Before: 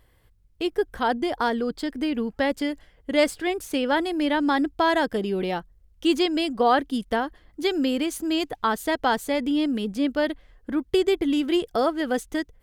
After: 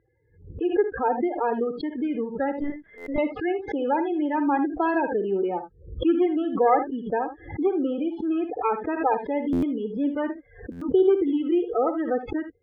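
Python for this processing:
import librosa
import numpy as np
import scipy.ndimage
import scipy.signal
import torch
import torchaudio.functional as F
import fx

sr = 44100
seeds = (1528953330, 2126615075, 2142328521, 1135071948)

y = fx.tracing_dist(x, sr, depth_ms=0.45)
y = y + 0.43 * np.pad(y, (int(2.4 * sr / 1000.0), 0))[:len(y)]
y = fx.spec_topn(y, sr, count=16)
y = fx.bandpass_edges(y, sr, low_hz=150.0, high_hz=2200.0)
y = fx.air_absorb(y, sr, metres=300.0)
y = fx.room_early_taps(y, sr, ms=(56, 77), db=(-12.0, -12.0))
y = fx.lpc_vocoder(y, sr, seeds[0], excitation='pitch_kept', order=10, at=(2.6, 3.18))
y = fx.buffer_glitch(y, sr, at_s=(2.97, 9.52, 10.71), block=512, repeats=8)
y = fx.pre_swell(y, sr, db_per_s=120.0)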